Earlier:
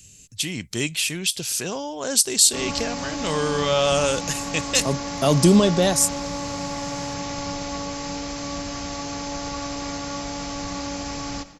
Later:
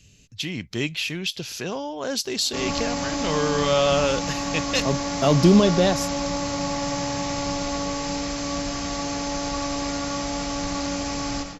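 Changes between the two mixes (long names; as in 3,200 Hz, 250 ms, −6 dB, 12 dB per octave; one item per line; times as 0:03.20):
speech: add moving average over 5 samples
background: send +10.5 dB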